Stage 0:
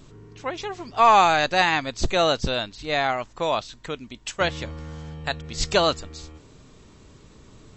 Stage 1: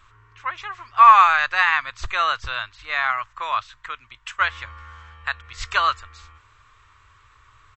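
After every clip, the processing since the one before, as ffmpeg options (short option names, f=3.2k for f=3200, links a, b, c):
-af "firequalizer=gain_entry='entry(110,0);entry(160,-26);entry(350,-15);entry(770,-4);entry(1100,15);entry(4600,-3)':delay=0.05:min_phase=1,volume=-6dB"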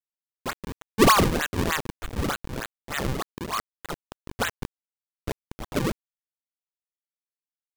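-af "acrusher=bits=4:mix=0:aa=0.000001,areverse,acompressor=mode=upward:threshold=-19dB:ratio=2.5,areverse,acrusher=samples=38:mix=1:aa=0.000001:lfo=1:lforange=60.8:lforate=3.3,volume=-6.5dB"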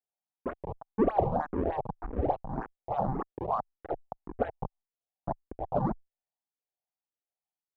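-filter_complex "[0:a]acompressor=threshold=-23dB:ratio=6,lowpass=f=760:t=q:w=4.2,asplit=2[a][b];[b]afreqshift=1.8[c];[a][c]amix=inputs=2:normalize=1"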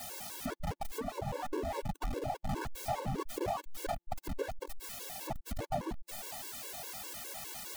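-af "aeval=exprs='val(0)+0.5*0.0398*sgn(val(0))':c=same,acompressor=threshold=-28dB:ratio=20,afftfilt=real='re*gt(sin(2*PI*4.9*pts/sr)*(1-2*mod(floor(b*sr/1024/290),2)),0)':imag='im*gt(sin(2*PI*4.9*pts/sr)*(1-2*mod(floor(b*sr/1024/290),2)),0)':win_size=1024:overlap=0.75,volume=-1dB"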